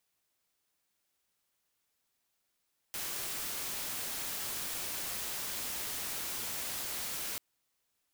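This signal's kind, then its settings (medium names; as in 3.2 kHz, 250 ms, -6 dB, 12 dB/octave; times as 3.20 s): noise white, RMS -38 dBFS 4.44 s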